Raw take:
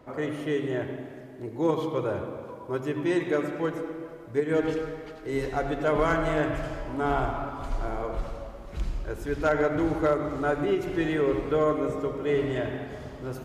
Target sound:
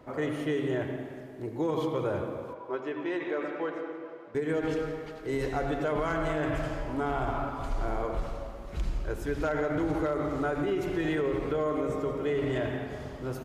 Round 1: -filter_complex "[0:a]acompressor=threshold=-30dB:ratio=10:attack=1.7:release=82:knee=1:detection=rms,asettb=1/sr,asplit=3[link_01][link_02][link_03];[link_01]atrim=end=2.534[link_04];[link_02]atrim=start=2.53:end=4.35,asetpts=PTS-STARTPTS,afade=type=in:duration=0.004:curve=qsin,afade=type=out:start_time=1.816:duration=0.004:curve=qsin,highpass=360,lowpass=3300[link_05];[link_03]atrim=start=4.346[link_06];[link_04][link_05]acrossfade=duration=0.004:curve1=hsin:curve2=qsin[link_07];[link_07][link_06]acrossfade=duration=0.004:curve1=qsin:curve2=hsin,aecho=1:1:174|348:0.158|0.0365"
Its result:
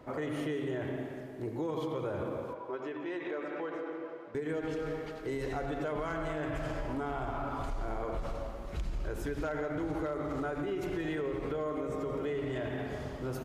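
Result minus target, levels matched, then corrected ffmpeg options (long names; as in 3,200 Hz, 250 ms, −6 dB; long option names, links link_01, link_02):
downward compressor: peak gain reduction +6 dB
-filter_complex "[0:a]acompressor=threshold=-23.5dB:ratio=10:attack=1.7:release=82:knee=1:detection=rms,asettb=1/sr,asplit=3[link_01][link_02][link_03];[link_01]atrim=end=2.534[link_04];[link_02]atrim=start=2.53:end=4.35,asetpts=PTS-STARTPTS,afade=type=in:duration=0.004:curve=qsin,afade=type=out:start_time=1.816:duration=0.004:curve=qsin,highpass=360,lowpass=3300[link_05];[link_03]atrim=start=4.346[link_06];[link_04][link_05]acrossfade=duration=0.004:curve1=hsin:curve2=qsin[link_07];[link_07][link_06]acrossfade=duration=0.004:curve1=qsin:curve2=hsin,aecho=1:1:174|348:0.158|0.0365"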